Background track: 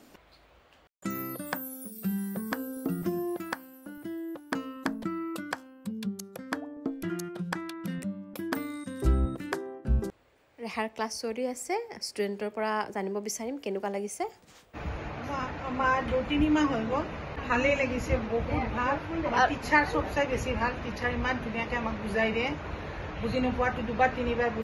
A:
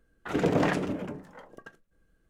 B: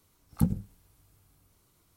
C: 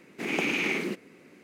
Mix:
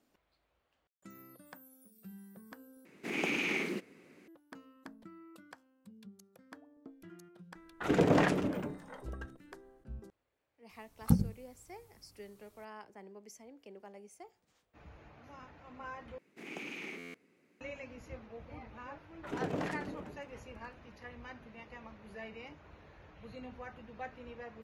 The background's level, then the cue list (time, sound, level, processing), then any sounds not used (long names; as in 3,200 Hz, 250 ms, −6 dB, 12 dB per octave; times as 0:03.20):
background track −19.5 dB
0:02.85: overwrite with C −5.5 dB
0:07.55: mix in A −1.5 dB
0:10.69: mix in B −1 dB
0:16.18: overwrite with C −16 dB + buffer that repeats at 0:00.80, times 13
0:18.98: mix in A −11.5 dB